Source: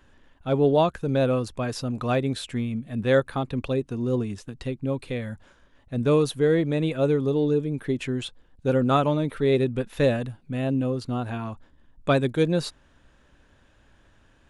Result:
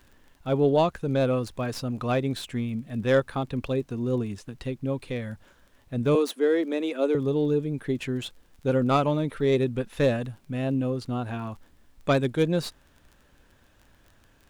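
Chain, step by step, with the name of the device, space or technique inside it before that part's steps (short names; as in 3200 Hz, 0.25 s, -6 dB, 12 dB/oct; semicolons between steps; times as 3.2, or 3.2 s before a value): record under a worn stylus (tracing distortion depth 0.04 ms; crackle 21/s -40 dBFS; pink noise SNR 42 dB); 6.15–7.15 steep high-pass 210 Hz 72 dB/oct; gain -1.5 dB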